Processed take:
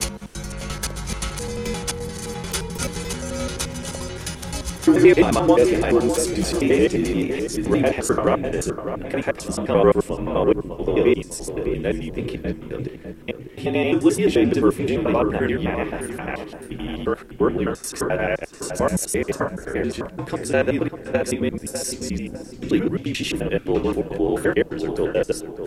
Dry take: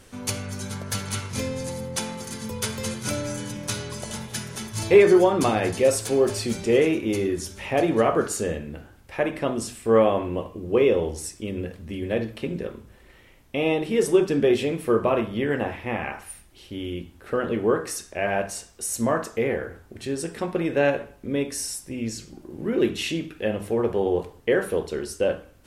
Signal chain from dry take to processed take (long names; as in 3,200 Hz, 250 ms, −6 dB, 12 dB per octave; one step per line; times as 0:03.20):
slices reordered back to front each 87 ms, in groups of 4
tape delay 600 ms, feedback 45%, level −8 dB, low-pass 1,600 Hz
frequency shifter −46 Hz
level +2.5 dB